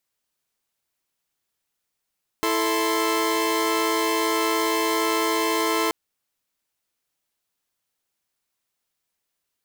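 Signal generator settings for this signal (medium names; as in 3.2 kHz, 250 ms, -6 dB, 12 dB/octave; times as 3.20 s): chord E4/A4/C6 saw, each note -22.5 dBFS 3.48 s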